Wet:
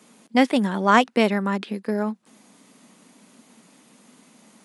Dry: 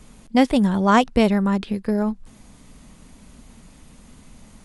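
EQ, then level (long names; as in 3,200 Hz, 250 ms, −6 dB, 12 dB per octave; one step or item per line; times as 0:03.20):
dynamic equaliser 1,900 Hz, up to +5 dB, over −38 dBFS, Q 1
high-pass filter 210 Hz 24 dB per octave
−1.5 dB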